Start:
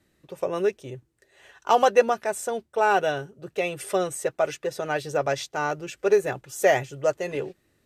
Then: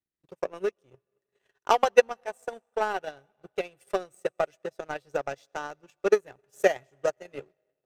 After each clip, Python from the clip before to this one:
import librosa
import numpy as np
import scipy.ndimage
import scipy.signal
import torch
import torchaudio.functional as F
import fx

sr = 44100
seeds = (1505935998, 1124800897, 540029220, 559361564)

y = fx.rev_freeverb(x, sr, rt60_s=2.5, hf_ratio=0.85, predelay_ms=65, drr_db=19.0)
y = fx.power_curve(y, sr, exponent=1.4)
y = fx.transient(y, sr, attack_db=11, sustain_db=-8)
y = y * 10.0 ** (-7.5 / 20.0)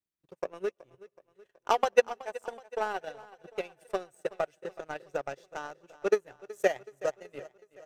y = fx.echo_feedback(x, sr, ms=374, feedback_pct=56, wet_db=-19)
y = y * 10.0 ** (-4.0 / 20.0)